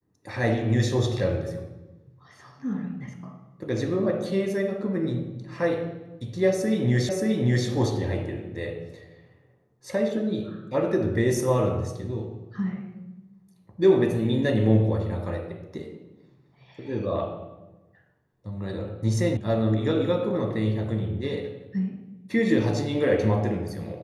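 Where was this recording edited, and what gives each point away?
7.09 s: repeat of the last 0.58 s
19.37 s: sound stops dead

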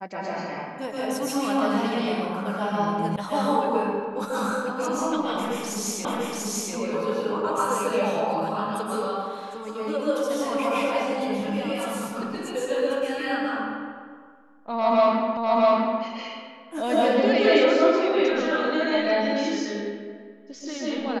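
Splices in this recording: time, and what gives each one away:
3.16 s: sound stops dead
6.05 s: repeat of the last 0.69 s
15.37 s: repeat of the last 0.65 s

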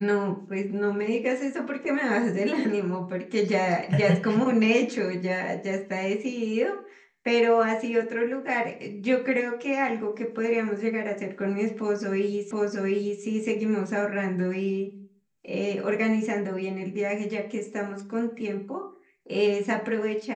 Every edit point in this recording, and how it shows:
12.51 s: repeat of the last 0.72 s

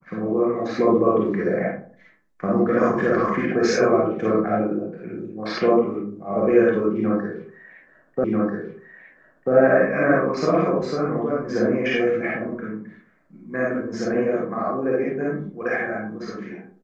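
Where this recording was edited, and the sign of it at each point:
8.24 s: repeat of the last 1.29 s

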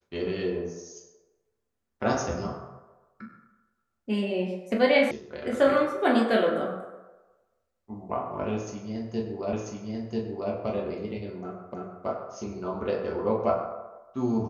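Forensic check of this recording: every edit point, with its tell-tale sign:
5.11 s: sound stops dead
9.53 s: repeat of the last 0.99 s
11.74 s: repeat of the last 0.32 s

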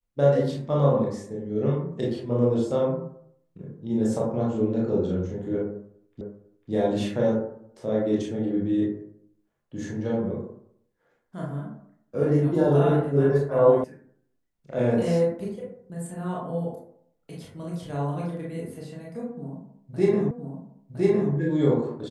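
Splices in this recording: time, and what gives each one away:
6.21 s: repeat of the last 0.5 s
13.84 s: sound stops dead
20.31 s: repeat of the last 1.01 s

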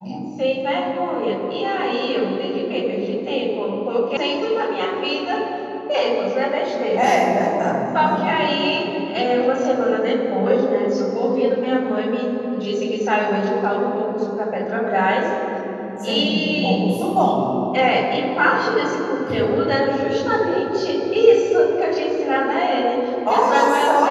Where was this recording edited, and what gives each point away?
4.17 s: sound stops dead

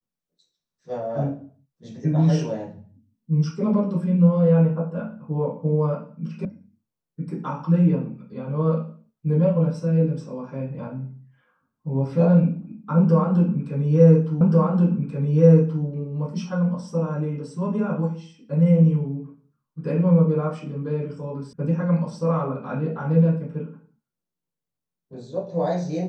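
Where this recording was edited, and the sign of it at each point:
6.45 s: sound stops dead
14.41 s: repeat of the last 1.43 s
21.53 s: sound stops dead

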